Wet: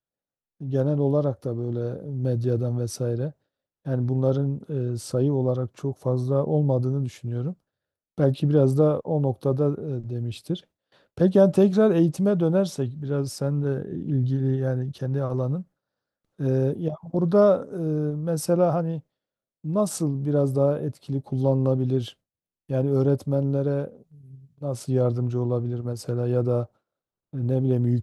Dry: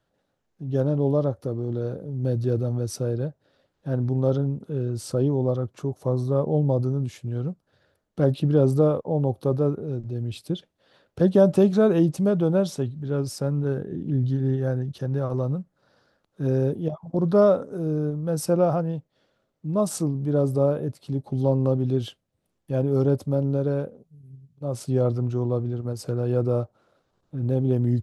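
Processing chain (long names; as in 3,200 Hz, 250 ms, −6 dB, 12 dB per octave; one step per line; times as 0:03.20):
noise gate with hold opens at −50 dBFS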